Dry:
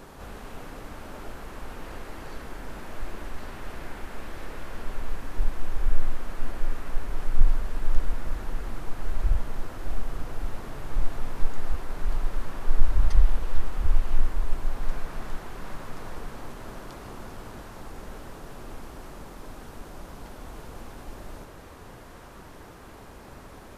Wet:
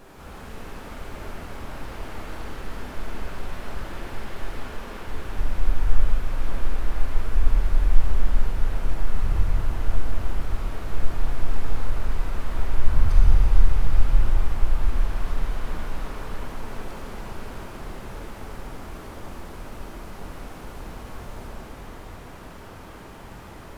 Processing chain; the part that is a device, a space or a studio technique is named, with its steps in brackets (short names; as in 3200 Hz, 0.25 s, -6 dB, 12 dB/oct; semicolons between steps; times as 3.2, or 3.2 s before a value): 4.59–5.08 elliptic high-pass 180 Hz, stop band 40 dB; shimmer-style reverb (harmoniser +12 st -8 dB; reverb RT60 5.6 s, pre-delay 18 ms, DRR -6.5 dB); gain -4.5 dB